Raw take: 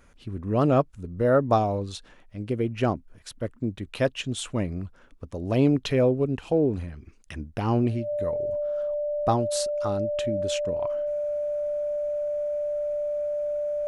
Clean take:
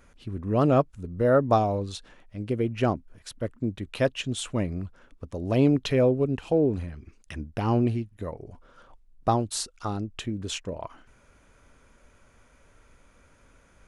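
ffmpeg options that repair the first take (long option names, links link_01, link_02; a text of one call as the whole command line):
ffmpeg -i in.wav -af "bandreject=frequency=590:width=30" out.wav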